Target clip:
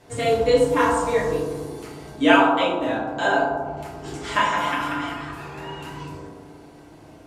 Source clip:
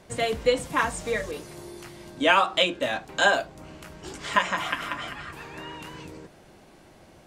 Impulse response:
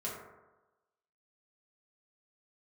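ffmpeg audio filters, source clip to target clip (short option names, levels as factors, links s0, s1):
-filter_complex "[0:a]asettb=1/sr,asplit=3[s0][s1][s2];[s0]atrim=end=2.364[s3];[s1]atrim=start=2.36:end=3.77,asetpts=PTS-STARTPTS,afade=t=in:d=0.004:c=qsin,afade=t=out:st=1.406:d=0.004:c=qsin,highshelf=f=2300:g=-11[s4];[s2]atrim=start=3.766[s5];[s3][s4]acrossfade=d=0.004:c1=hsin:c2=qsin[s6];[s6][s5]acrossfade=d=0.004:c1=qsin:c2=hsin[s7];[1:a]atrim=start_sample=2205,asetrate=29988,aresample=44100[s8];[s7][s8]afir=irnorm=-1:irlink=0"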